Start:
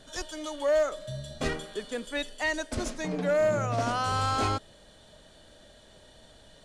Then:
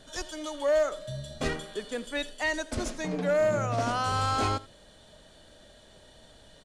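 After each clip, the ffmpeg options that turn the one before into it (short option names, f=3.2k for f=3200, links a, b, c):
-af "aecho=1:1:82:0.1"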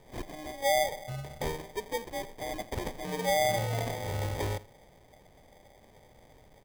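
-af "equalizer=f=125:t=o:w=1:g=5,equalizer=f=250:t=o:w=1:g=-9,equalizer=f=500:t=o:w=1:g=10,equalizer=f=1k:t=o:w=1:g=-12,equalizer=f=2k:t=o:w=1:g=-11,equalizer=f=4k:t=o:w=1:g=-10,equalizer=f=8k:t=o:w=1:g=12,acrusher=samples=32:mix=1:aa=0.000001,volume=-3.5dB"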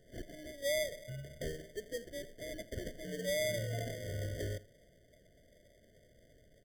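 -af "afftfilt=real='re*eq(mod(floor(b*sr/1024/720),2),0)':imag='im*eq(mod(floor(b*sr/1024/720),2),0)':win_size=1024:overlap=0.75,volume=-6dB"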